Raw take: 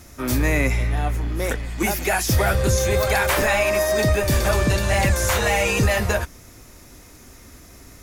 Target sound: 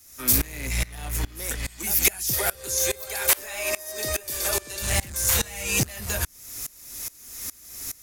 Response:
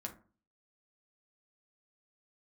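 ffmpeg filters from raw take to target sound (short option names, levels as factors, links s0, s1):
-filter_complex "[0:a]asettb=1/sr,asplit=3[s0][s1][s2];[s0]atrim=end=2.334[s3];[s1]atrim=start=2.33:end=4.82,asetpts=PTS-STARTPTS,afade=t=in:d=0.004:c=qsin,afade=t=out:st=2.486:d=0.004:c=qsin,lowshelf=f=270:t=q:w=1.5:g=-12[s4];[s2]atrim=start=4.816[s5];[s3][s4]acrossfade=d=0.004:c1=hsin:c2=qsin[s6];[s6][s5]acrossfade=d=0.004:c1=qsin:c2=hsin,acrossover=split=320[s7][s8];[s8]acompressor=threshold=0.0355:ratio=5[s9];[s7][s9]amix=inputs=2:normalize=0,volume=8.91,asoftclip=hard,volume=0.112,crystalizer=i=9:c=0,aeval=exprs='val(0)*pow(10,-24*if(lt(mod(-2.4*n/s,1),2*abs(-2.4)/1000),1-mod(-2.4*n/s,1)/(2*abs(-2.4)/1000),(mod(-2.4*n/s,1)-2*abs(-2.4)/1000)/(1-2*abs(-2.4)/1000))/20)':c=same"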